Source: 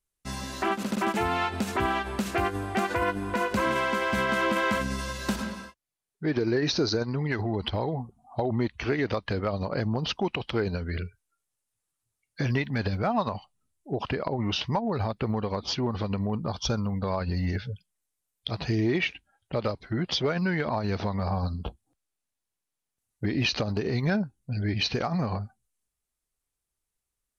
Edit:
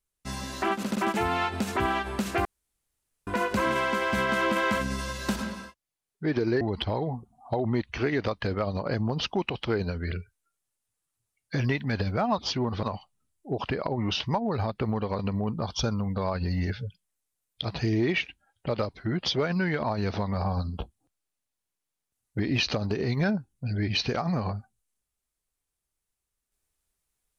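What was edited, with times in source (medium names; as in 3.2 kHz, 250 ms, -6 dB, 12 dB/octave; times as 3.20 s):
2.45–3.27 s: room tone
6.61–7.47 s: delete
15.60–16.05 s: move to 13.24 s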